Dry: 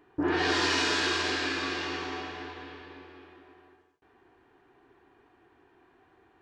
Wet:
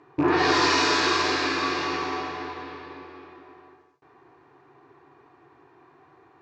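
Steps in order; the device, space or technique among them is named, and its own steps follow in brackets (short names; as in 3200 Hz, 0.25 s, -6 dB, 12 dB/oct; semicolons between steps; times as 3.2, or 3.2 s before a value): car door speaker with a rattle (rattling part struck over -40 dBFS, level -33 dBFS; speaker cabinet 110–6700 Hz, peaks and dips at 140 Hz +10 dB, 210 Hz -10 dB, 1100 Hz +6 dB, 1600 Hz -4 dB, 3100 Hz -8 dB); gain +6.5 dB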